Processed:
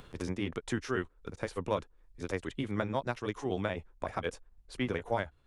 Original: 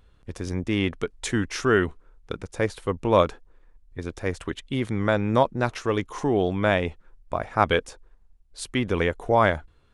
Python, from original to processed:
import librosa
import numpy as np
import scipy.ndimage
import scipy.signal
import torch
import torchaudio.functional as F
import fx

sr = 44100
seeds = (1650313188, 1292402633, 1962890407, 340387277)

y = fx.stretch_grains(x, sr, factor=0.55, grain_ms=124.0)
y = y * (1.0 - 0.39 / 2.0 + 0.39 / 2.0 * np.cos(2.0 * np.pi * 3.9 * (np.arange(len(y)) / sr)))
y = fx.band_squash(y, sr, depth_pct=70)
y = F.gain(torch.from_numpy(y), -7.5).numpy()